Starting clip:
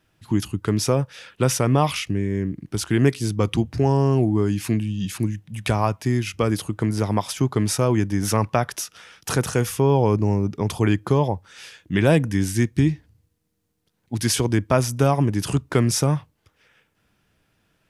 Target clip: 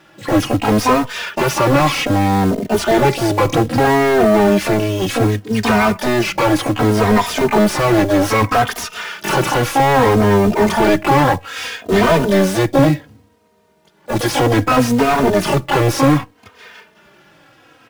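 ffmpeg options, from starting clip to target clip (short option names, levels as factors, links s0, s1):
-filter_complex "[0:a]asplit=2[s0][s1];[s1]asetrate=88200,aresample=44100,atempo=0.5,volume=0.631[s2];[s0][s2]amix=inputs=2:normalize=0,asplit=2[s3][s4];[s4]highpass=f=720:p=1,volume=50.1,asoftclip=type=tanh:threshold=0.891[s5];[s3][s5]amix=inputs=2:normalize=0,lowpass=f=1300:p=1,volume=0.501,acrusher=bits=5:mode=log:mix=0:aa=0.000001,asplit=2[s6][s7];[s7]adelay=3,afreqshift=-0.64[s8];[s6][s8]amix=inputs=2:normalize=1"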